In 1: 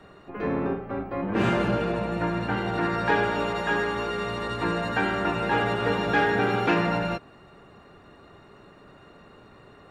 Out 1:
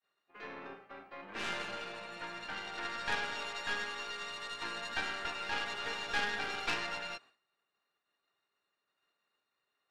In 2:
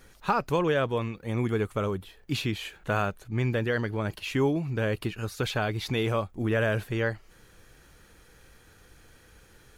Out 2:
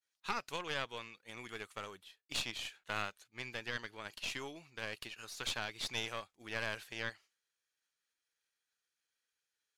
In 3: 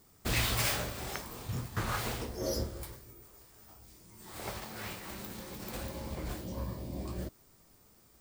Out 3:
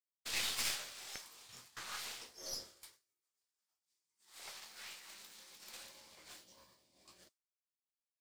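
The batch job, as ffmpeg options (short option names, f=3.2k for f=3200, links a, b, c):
-af "bandpass=f=5k:t=q:w=0.72:csg=0,aeval=exprs='0.106*(cos(1*acos(clip(val(0)/0.106,-1,1)))-cos(1*PI/2))+0.0266*(cos(4*acos(clip(val(0)/0.106,-1,1)))-cos(4*PI/2))':c=same,agate=range=-33dB:threshold=-50dB:ratio=3:detection=peak,volume=-2.5dB"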